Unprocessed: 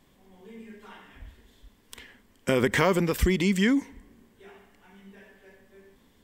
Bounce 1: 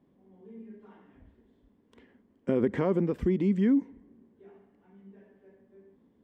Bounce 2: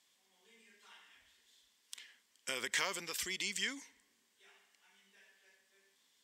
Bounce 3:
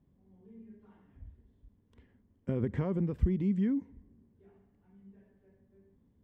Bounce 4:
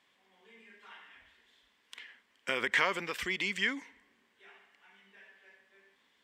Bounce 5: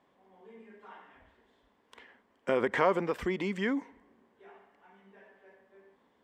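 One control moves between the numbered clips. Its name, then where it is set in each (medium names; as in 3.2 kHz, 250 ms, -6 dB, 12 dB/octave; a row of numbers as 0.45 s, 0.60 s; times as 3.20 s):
band-pass filter, frequency: 270 Hz, 5.9 kHz, 100 Hz, 2.3 kHz, 810 Hz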